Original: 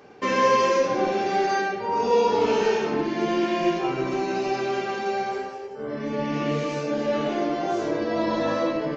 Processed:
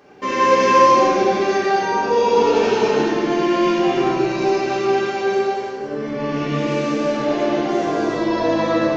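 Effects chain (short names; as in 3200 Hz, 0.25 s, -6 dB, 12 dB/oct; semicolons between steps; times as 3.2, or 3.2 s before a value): non-linear reverb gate 0.43 s flat, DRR -6 dB; gain -1 dB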